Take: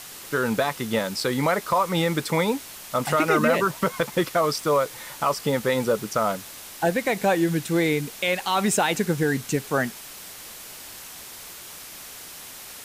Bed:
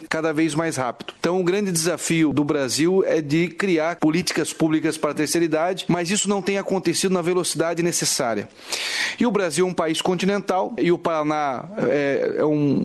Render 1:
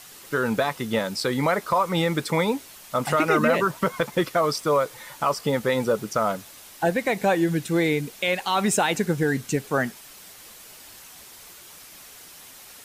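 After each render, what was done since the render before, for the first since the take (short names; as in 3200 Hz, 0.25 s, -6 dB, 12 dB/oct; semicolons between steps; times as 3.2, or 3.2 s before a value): denoiser 6 dB, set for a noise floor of -41 dBFS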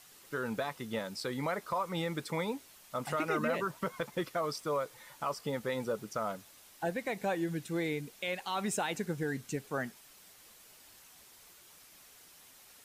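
gain -12 dB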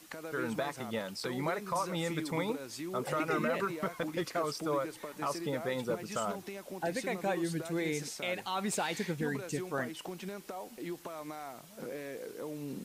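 add bed -21.5 dB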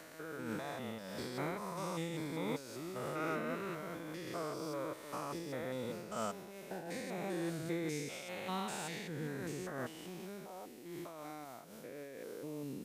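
stepped spectrum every 0.2 s; noise-modulated level, depth 60%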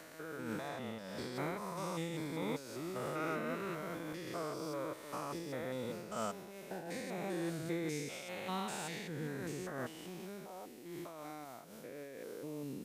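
0.68–1.36 high shelf 9800 Hz -6.5 dB; 2.42–4.13 three-band squash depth 40%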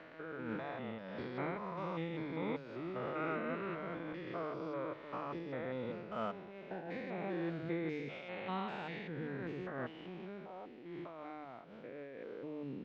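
LPF 3100 Hz 24 dB/oct; notches 50/100/150 Hz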